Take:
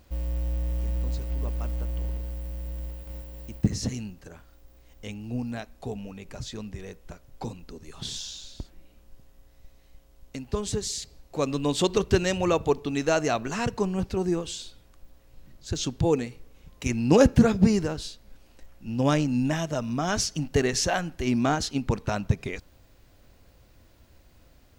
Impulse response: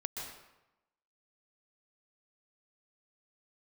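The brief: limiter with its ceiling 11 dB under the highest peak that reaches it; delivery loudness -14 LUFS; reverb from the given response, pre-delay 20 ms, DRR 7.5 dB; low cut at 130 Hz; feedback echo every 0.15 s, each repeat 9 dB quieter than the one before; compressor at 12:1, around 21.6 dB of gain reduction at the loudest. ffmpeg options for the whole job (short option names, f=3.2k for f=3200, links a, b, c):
-filter_complex "[0:a]highpass=130,acompressor=threshold=-35dB:ratio=12,alimiter=level_in=9.5dB:limit=-24dB:level=0:latency=1,volume=-9.5dB,aecho=1:1:150|300|450|600:0.355|0.124|0.0435|0.0152,asplit=2[a][b];[1:a]atrim=start_sample=2205,adelay=20[c];[b][c]afir=irnorm=-1:irlink=0,volume=-8.5dB[d];[a][d]amix=inputs=2:normalize=0,volume=28dB"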